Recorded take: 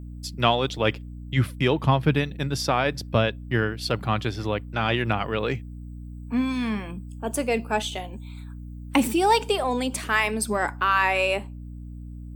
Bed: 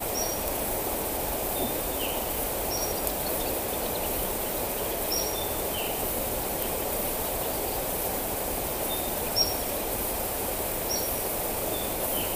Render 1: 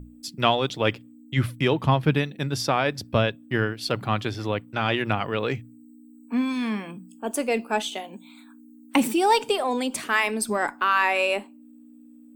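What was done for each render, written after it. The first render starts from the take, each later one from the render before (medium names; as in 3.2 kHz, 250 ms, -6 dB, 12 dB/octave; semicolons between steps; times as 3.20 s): hum notches 60/120/180 Hz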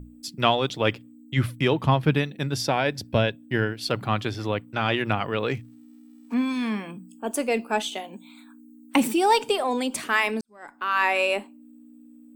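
2.55–3.75 s: band-stop 1.2 kHz, Q 5.3; 5.54–6.34 s: dead-time distortion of 0.097 ms; 10.41–11.03 s: fade in quadratic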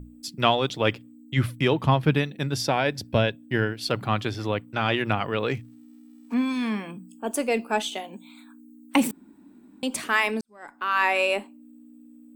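9.11–9.83 s: room tone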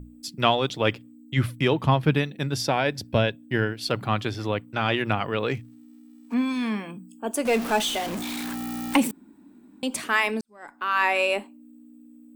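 7.45–8.97 s: jump at every zero crossing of -26.5 dBFS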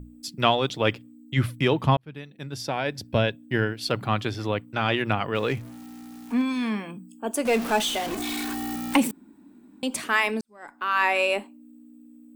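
1.97–3.30 s: fade in; 5.35–6.42 s: jump at every zero crossing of -40 dBFS; 8.10–8.76 s: comb 2.7 ms, depth 84%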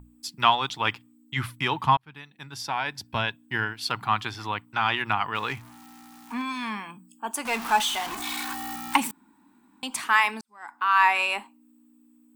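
resonant low shelf 710 Hz -8 dB, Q 3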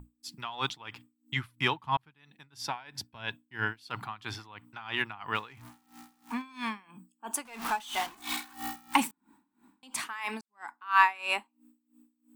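logarithmic tremolo 3 Hz, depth 22 dB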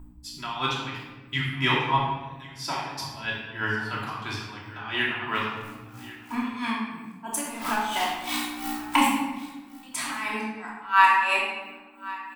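delay 1092 ms -18.5 dB; simulated room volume 800 m³, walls mixed, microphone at 2.9 m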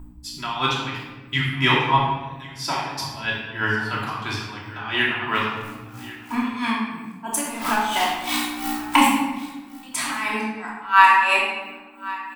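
trim +5 dB; peak limiter -1 dBFS, peak gain reduction 1 dB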